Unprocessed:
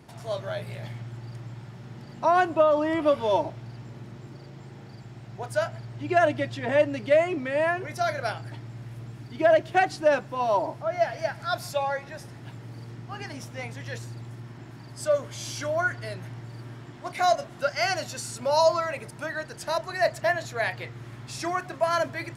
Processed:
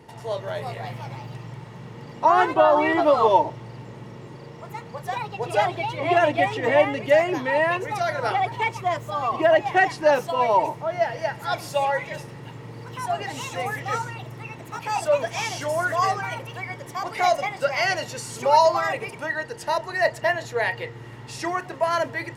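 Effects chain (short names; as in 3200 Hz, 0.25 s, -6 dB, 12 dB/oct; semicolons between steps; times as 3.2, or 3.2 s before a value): small resonant body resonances 470/890/1900/2800 Hz, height 12 dB, ringing for 35 ms; echoes that change speed 0.403 s, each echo +3 st, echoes 2, each echo -6 dB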